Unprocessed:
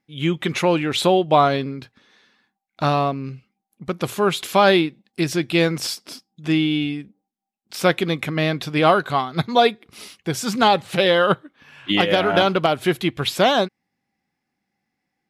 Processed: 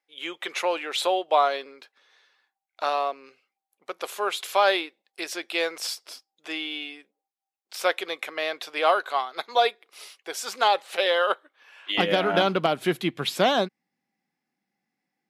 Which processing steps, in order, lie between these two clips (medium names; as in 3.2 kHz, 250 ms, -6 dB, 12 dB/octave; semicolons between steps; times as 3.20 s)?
high-pass 470 Hz 24 dB/octave, from 11.98 s 150 Hz; trim -4.5 dB